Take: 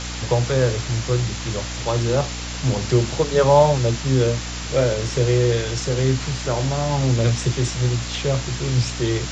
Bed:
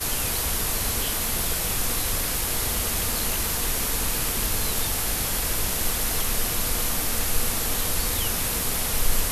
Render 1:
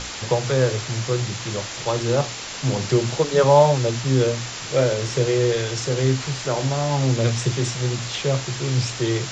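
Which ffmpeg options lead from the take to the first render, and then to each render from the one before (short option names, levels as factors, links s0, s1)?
-af "bandreject=f=60:t=h:w=6,bandreject=f=120:t=h:w=6,bandreject=f=180:t=h:w=6,bandreject=f=240:t=h:w=6,bandreject=f=300:t=h:w=6"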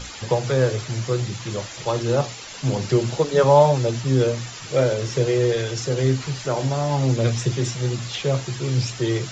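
-af "afftdn=nr=9:nf=-33"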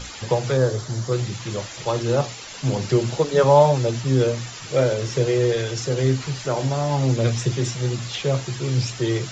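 -filter_complex "[0:a]asettb=1/sr,asplit=3[s0][s1][s2];[s0]atrim=end=0.574[s3];[s1]atrim=start=0.57:end=1.12,asetpts=PTS-STARTPTS,afade=t=in:d=0.004:c=qsin,afade=t=out:st=0.546:d=0.004:c=qsin,equalizer=f=2500:t=o:w=0.64:g=-12[s4];[s2]atrim=start=1.116[s5];[s3][s4]acrossfade=d=0.004:c1=hsin:c2=qsin[s6];[s6][s5]acrossfade=d=0.004:c1=qsin:c2=hsin"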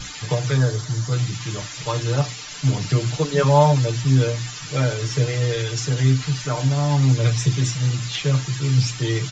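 -af "equalizer=f=530:t=o:w=1.4:g=-9,aecho=1:1:6.7:0.97"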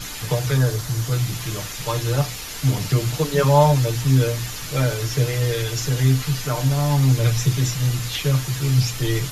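-filter_complex "[1:a]volume=0.299[s0];[0:a][s0]amix=inputs=2:normalize=0"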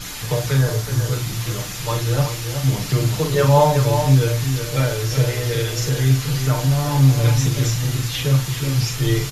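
-filter_complex "[0:a]asplit=2[s0][s1];[s1]adelay=44,volume=0.531[s2];[s0][s2]amix=inputs=2:normalize=0,asplit=2[s3][s4];[s4]adelay=373.2,volume=0.447,highshelf=f=4000:g=-8.4[s5];[s3][s5]amix=inputs=2:normalize=0"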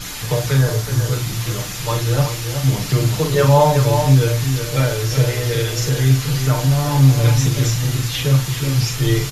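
-af "volume=1.26,alimiter=limit=0.794:level=0:latency=1"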